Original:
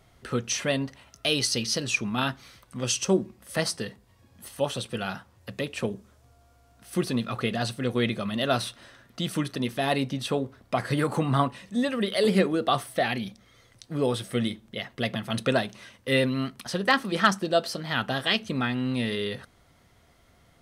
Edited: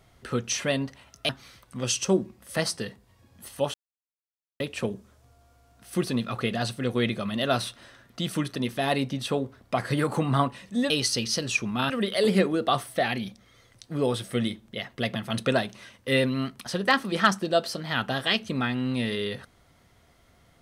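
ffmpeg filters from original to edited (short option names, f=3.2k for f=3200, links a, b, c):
-filter_complex "[0:a]asplit=6[a][b][c][d][e][f];[a]atrim=end=1.292[g];[b]atrim=start=2.288:end=4.74,asetpts=PTS-STARTPTS,afade=t=out:st=2.448:d=0.004:c=hsin[h];[c]atrim=start=4.74:end=5.6,asetpts=PTS-STARTPTS,volume=0[i];[d]atrim=start=5.6:end=11.902,asetpts=PTS-STARTPTS,afade=t=in:d=0.004:c=hsin[j];[e]atrim=start=1.288:end=2.292[k];[f]atrim=start=11.898[l];[h][i][j]concat=n=3:v=0:a=1[m];[g][m]acrossfade=d=0.004:c1=hsin:c2=hsin[n];[n][k]acrossfade=d=0.004:c1=hsin:c2=hsin[o];[o][l]acrossfade=d=0.004:c1=hsin:c2=hsin"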